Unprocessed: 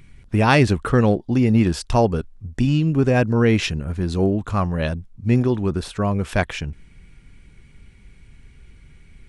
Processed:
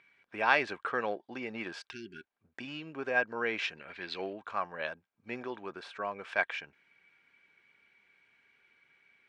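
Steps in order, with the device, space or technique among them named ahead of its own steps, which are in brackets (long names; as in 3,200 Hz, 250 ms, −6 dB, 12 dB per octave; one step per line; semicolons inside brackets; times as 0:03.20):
tin-can telephone (band-pass filter 680–3,200 Hz; hollow resonant body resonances 1,600/2,300 Hz, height 9 dB)
0:01.93–0:02.27: healed spectral selection 390–1,400 Hz after
0:03.77–0:04.33: flat-topped bell 3,000 Hz +11 dB
level −7.5 dB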